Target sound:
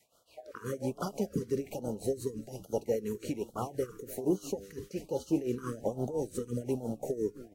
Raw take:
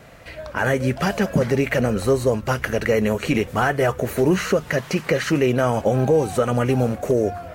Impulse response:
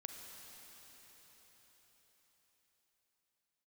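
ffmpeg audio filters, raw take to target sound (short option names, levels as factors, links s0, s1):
-filter_complex "[0:a]acrossover=split=460|3000[s0][s1][s2];[s1]acompressor=threshold=0.0316:ratio=6[s3];[s0][s3][s2]amix=inputs=3:normalize=0,bass=f=250:g=-13,treble=f=4000:g=12,afwtdn=0.0562,adynamicequalizer=threshold=0.0158:dfrequency=500:dqfactor=2:tfrequency=500:tqfactor=2:attack=5:release=100:ratio=0.375:range=2:mode=cutabove:tftype=bell,asplit=2[s4][s5];[s5]asplit=4[s6][s7][s8][s9];[s6]adelay=254,afreqshift=-110,volume=0.126[s10];[s7]adelay=508,afreqshift=-220,volume=0.0603[s11];[s8]adelay=762,afreqshift=-330,volume=0.0288[s12];[s9]adelay=1016,afreqshift=-440,volume=0.014[s13];[s10][s11][s12][s13]amix=inputs=4:normalize=0[s14];[s4][s14]amix=inputs=2:normalize=0,flanger=delay=8:depth=2.2:regen=86:speed=0.32:shape=triangular,tremolo=f=5.8:d=0.8,afftfilt=real='re*(1-between(b*sr/1024,670*pow(2100/670,0.5+0.5*sin(2*PI*1.2*pts/sr))/1.41,670*pow(2100/670,0.5+0.5*sin(2*PI*1.2*pts/sr))*1.41))':imag='im*(1-between(b*sr/1024,670*pow(2100/670,0.5+0.5*sin(2*PI*1.2*pts/sr))/1.41,670*pow(2100/670,0.5+0.5*sin(2*PI*1.2*pts/sr))*1.41))':win_size=1024:overlap=0.75,volume=1.19"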